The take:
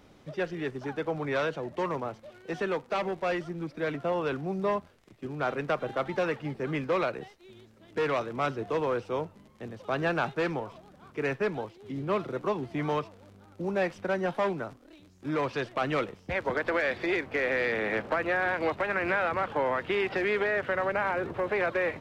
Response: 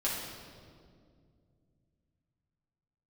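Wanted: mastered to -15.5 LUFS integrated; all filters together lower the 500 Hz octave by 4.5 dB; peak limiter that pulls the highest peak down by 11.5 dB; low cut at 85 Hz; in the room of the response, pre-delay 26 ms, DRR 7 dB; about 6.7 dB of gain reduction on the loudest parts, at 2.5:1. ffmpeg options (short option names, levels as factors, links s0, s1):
-filter_complex "[0:a]highpass=85,equalizer=f=500:t=o:g=-5.5,acompressor=threshold=0.0158:ratio=2.5,alimiter=level_in=3.16:limit=0.0631:level=0:latency=1,volume=0.316,asplit=2[s0][s1];[1:a]atrim=start_sample=2205,adelay=26[s2];[s1][s2]afir=irnorm=-1:irlink=0,volume=0.211[s3];[s0][s3]amix=inputs=2:normalize=0,volume=22.4"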